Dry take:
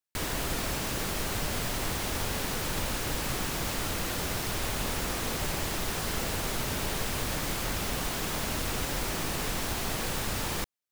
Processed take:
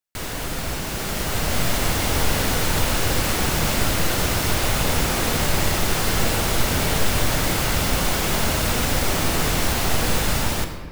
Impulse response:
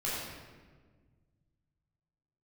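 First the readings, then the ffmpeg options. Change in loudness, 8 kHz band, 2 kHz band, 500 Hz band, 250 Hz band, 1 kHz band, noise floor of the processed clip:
+9.5 dB, +9.0 dB, +9.5 dB, +10.0 dB, +9.5 dB, +9.5 dB, -29 dBFS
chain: -filter_complex "[0:a]dynaudnorm=f=860:g=3:m=7.5dB,asplit=2[a][b];[1:a]atrim=start_sample=2205[c];[b][c]afir=irnorm=-1:irlink=0,volume=-9.5dB[d];[a][d]amix=inputs=2:normalize=0"

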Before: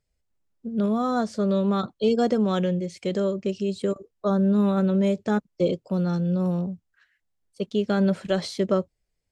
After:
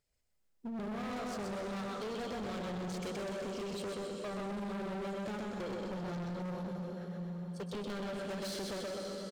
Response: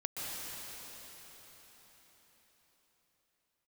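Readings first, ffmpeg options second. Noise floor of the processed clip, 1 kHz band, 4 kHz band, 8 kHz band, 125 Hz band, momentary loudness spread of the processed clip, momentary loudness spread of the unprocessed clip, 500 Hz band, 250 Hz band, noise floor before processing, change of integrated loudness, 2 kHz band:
-73 dBFS, -11.0 dB, -8.0 dB, n/a, -15.5 dB, 3 LU, 8 LU, -14.5 dB, -16.5 dB, -78 dBFS, -15.0 dB, -7.0 dB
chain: -filter_complex "[0:a]lowshelf=f=260:g=-7,acompressor=threshold=-30dB:ratio=6,aecho=1:1:127|254|381|508|635|762:0.668|0.307|0.141|0.0651|0.0299|0.0138,asplit=2[a][b];[1:a]atrim=start_sample=2205,highshelf=f=7.2k:g=7[c];[b][c]afir=irnorm=-1:irlink=0,volume=-5.5dB[d];[a][d]amix=inputs=2:normalize=0,volume=33.5dB,asoftclip=hard,volume=-33.5dB,volume=-4dB"

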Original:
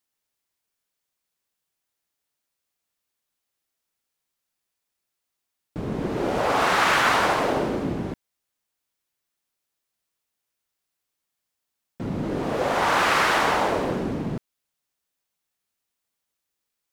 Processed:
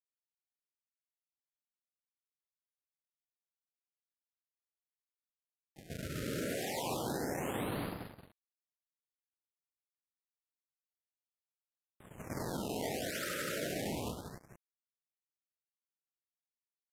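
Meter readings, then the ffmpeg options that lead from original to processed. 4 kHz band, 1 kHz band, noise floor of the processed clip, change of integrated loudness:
-15.0 dB, -21.5 dB, under -85 dBFS, -16.0 dB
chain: -filter_complex "[0:a]lowshelf=f=280:g=-11,afreqshift=-300,acrossover=split=7200[a][b];[a]acrusher=samples=22:mix=1:aa=0.000001:lfo=1:lforange=35.2:lforate=0.73[c];[c][b]amix=inputs=2:normalize=0,highpass=110,aeval=exprs='sgn(val(0))*max(abs(val(0))-0.0112,0)':c=same,agate=range=-10dB:threshold=-40dB:ratio=16:detection=peak,aresample=32000,aresample=44100,highshelf=f=9.1k:g=4.5,asplit=2[d][e];[e]aecho=0:1:179:0.447[f];[d][f]amix=inputs=2:normalize=0,acompressor=threshold=-29dB:ratio=6,alimiter=level_in=3dB:limit=-24dB:level=0:latency=1:release=20,volume=-3dB,afftfilt=real='re*(1-between(b*sr/1024,870*pow(7200/870,0.5+0.5*sin(2*PI*0.28*pts/sr))/1.41,870*pow(7200/870,0.5+0.5*sin(2*PI*0.28*pts/sr))*1.41))':imag='im*(1-between(b*sr/1024,870*pow(7200/870,0.5+0.5*sin(2*PI*0.28*pts/sr))/1.41,870*pow(7200/870,0.5+0.5*sin(2*PI*0.28*pts/sr))*1.41))':win_size=1024:overlap=0.75"

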